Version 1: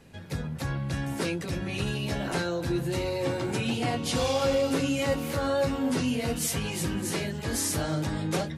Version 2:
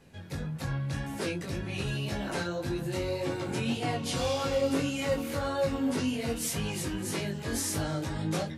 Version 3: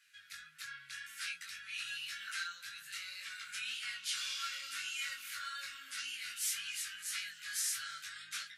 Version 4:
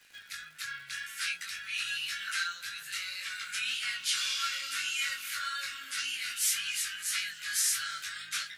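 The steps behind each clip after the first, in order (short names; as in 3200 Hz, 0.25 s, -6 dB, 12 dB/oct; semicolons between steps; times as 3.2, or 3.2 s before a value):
chorus 1.8 Hz, delay 19 ms, depth 3.3 ms
elliptic high-pass 1400 Hz, stop band 40 dB; gain -1.5 dB
crackle 220/s -54 dBFS; gain +7.5 dB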